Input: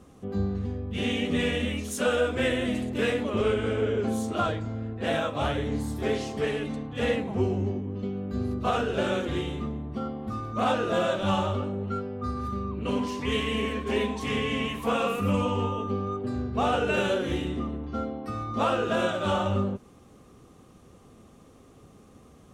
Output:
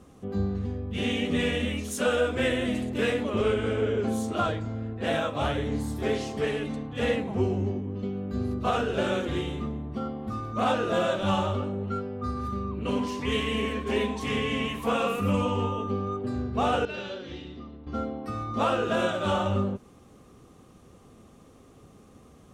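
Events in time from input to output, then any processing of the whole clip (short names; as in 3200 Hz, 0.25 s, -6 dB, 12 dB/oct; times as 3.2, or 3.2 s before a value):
16.85–17.87 ladder low-pass 5200 Hz, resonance 65%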